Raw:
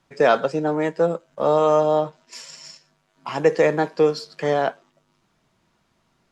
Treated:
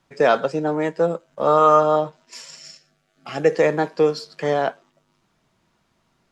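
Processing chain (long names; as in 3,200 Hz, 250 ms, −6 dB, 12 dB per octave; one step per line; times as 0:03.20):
0:01.47–0:01.96: parametric band 1,300 Hz +14 dB 0.42 octaves
0:02.58–0:03.53: Butterworth band-reject 980 Hz, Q 3.2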